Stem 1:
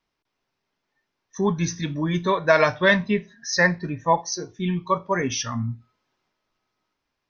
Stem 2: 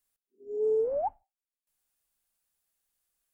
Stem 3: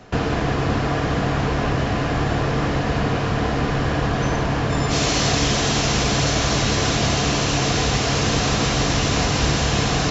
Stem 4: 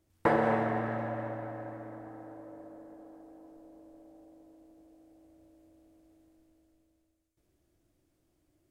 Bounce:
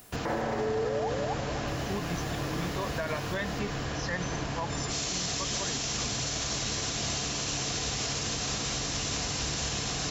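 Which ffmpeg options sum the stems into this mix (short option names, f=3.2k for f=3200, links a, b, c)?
-filter_complex "[0:a]adelay=500,volume=-13dB[a];[1:a]acompressor=mode=upward:threshold=-37dB:ratio=2.5,volume=0.5dB,asplit=2[b][c];[c]volume=-3.5dB[d];[2:a]aemphasis=mode=production:type=75fm,volume=-12.5dB[e];[3:a]volume=1dB[f];[d]aecho=0:1:252|504|756|1008|1260:1|0.34|0.116|0.0393|0.0134[g];[a][b][e][f][g]amix=inputs=5:normalize=0,alimiter=limit=-22dB:level=0:latency=1:release=75"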